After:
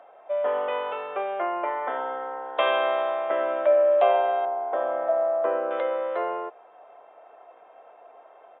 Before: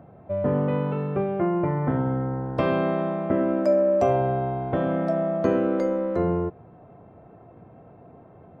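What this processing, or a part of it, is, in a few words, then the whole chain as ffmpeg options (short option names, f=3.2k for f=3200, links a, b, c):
musical greeting card: -filter_complex "[0:a]aresample=8000,aresample=44100,highpass=f=590:w=0.5412,highpass=f=590:w=1.3066,equalizer=f=3.3k:t=o:w=0.5:g=7.5,asettb=1/sr,asplit=3[a][b][c];[a]atrim=end=4.454[d];[b]atrim=start=4.45:end=5.71,asetpts=PTS-STARTPTS,afade=t=in:d=0.004:c=qsin,afade=t=out:st=1.256:d=0.004:c=qsin,lowpass=1.2k[e];[c]atrim=start=5.706[f];[d][e]acrossfade=d=0.004:c1=hsin:c2=qsin[g];[g][f]acrossfade=d=0.004:c1=qsin:c2=hsin,volume=4.5dB"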